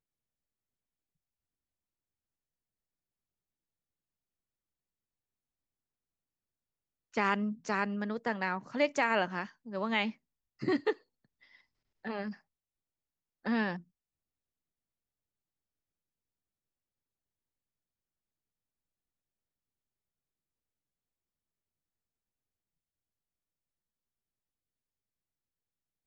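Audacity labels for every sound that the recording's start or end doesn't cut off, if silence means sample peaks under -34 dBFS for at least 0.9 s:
7.170000	10.920000	sound
12.050000	12.300000	sound
13.460000	13.760000	sound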